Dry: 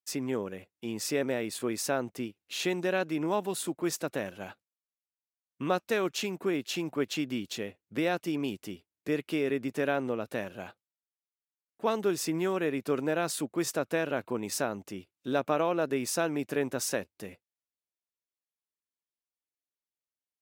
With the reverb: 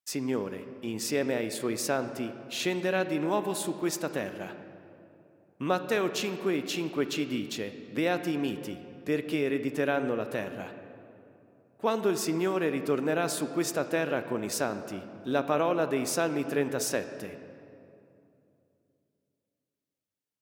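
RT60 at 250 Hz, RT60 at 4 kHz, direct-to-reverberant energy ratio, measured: 3.4 s, 1.6 s, 9.5 dB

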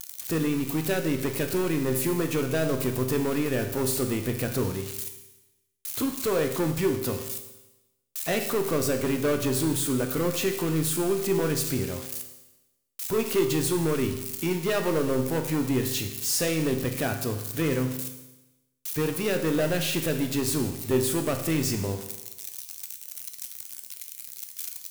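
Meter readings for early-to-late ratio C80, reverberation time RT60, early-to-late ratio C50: 10.5 dB, 1.0 s, 8.0 dB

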